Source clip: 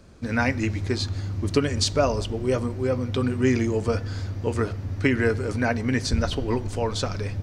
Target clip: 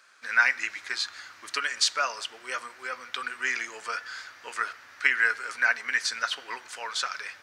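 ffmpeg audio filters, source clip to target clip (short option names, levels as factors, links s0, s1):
-af "highpass=f=1500:t=q:w=2.3"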